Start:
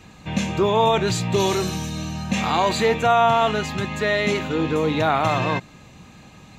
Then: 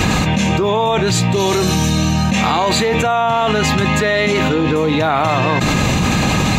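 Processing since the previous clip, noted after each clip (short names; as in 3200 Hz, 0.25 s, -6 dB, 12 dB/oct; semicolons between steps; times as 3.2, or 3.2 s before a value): fast leveller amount 100%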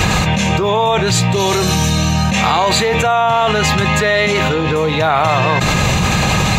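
bell 270 Hz -10.5 dB 0.65 oct; gain +2.5 dB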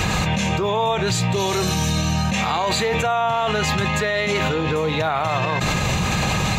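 limiter -6 dBFS, peak gain reduction 4.5 dB; gain -5.5 dB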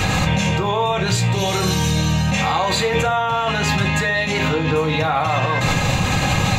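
reverb RT60 0.45 s, pre-delay 4 ms, DRR 1.5 dB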